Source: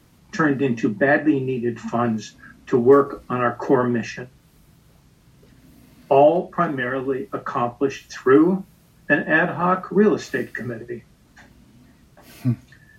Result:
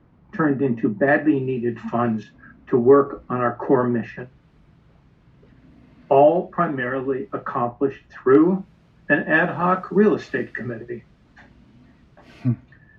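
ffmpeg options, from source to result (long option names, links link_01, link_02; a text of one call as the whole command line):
ffmpeg -i in.wav -af "asetnsamples=nb_out_samples=441:pad=0,asendcmd='1.08 lowpass f 2900;2.23 lowpass f 1700;4.19 lowpass f 2500;7.57 lowpass f 1500;8.35 lowpass f 3100;9.34 lowpass f 5500;10.15 lowpass f 3400;12.48 lowpass f 2000',lowpass=1400" out.wav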